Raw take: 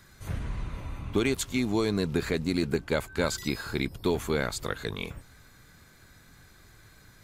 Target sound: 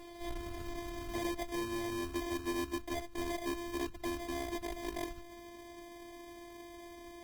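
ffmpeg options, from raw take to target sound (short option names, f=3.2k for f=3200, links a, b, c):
-filter_complex "[0:a]equalizer=f=125:t=o:w=1:g=9,equalizer=f=250:t=o:w=1:g=8,equalizer=f=500:t=o:w=1:g=4,equalizer=f=2k:t=o:w=1:g=6,equalizer=f=4k:t=o:w=1:g=10,equalizer=f=8k:t=o:w=1:g=-11,acrossover=split=170|3000[a][b][c];[b]acompressor=threshold=-39dB:ratio=6[d];[a][d][c]amix=inputs=3:normalize=0,afftfilt=real='hypot(re,im)*cos(PI*b)':imag='0':win_size=512:overlap=0.75,acrusher=samples=32:mix=1:aa=0.000001,asoftclip=type=tanh:threshold=-28dB" -ar 48000 -c:a libopus -b:a 16k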